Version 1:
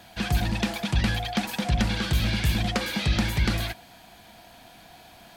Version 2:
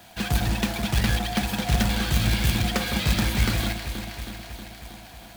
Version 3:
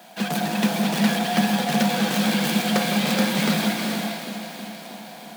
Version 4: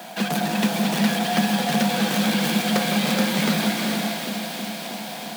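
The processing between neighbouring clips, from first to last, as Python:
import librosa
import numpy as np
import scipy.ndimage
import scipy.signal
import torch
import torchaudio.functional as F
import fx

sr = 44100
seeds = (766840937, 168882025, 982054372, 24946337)

y1 = fx.echo_alternate(x, sr, ms=159, hz=1500.0, feedback_pct=81, wet_db=-7)
y1 = fx.quant_companded(y1, sr, bits=4)
y2 = scipy.signal.sosfilt(scipy.signal.cheby1(6, 6, 150.0, 'highpass', fs=sr, output='sos'), y1)
y2 = fx.rev_gated(y2, sr, seeds[0], gate_ms=480, shape='rising', drr_db=2.0)
y2 = y2 * 10.0 ** (6.0 / 20.0)
y3 = fx.echo_wet_highpass(y2, sr, ms=292, feedback_pct=79, hz=2900.0, wet_db=-11.0)
y3 = fx.band_squash(y3, sr, depth_pct=40)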